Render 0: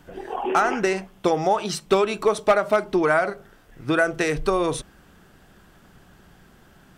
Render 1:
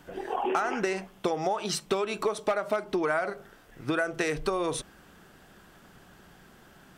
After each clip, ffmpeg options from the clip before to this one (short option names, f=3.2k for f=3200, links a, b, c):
-af "acompressor=threshold=-24dB:ratio=5,lowshelf=f=150:g=-7.5"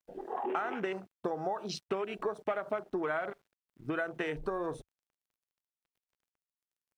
-af "aeval=exprs='val(0)*gte(abs(val(0)),0.00596)':c=same,afwtdn=0.0158,volume=-6dB"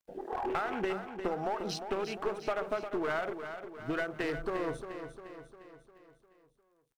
-filter_complex "[0:a]aeval=exprs='clip(val(0),-1,0.0224)':c=same,asplit=2[a][b];[b]aecho=0:1:352|704|1056|1408|1760|2112:0.355|0.185|0.0959|0.0499|0.0259|0.0135[c];[a][c]amix=inputs=2:normalize=0,volume=1.5dB"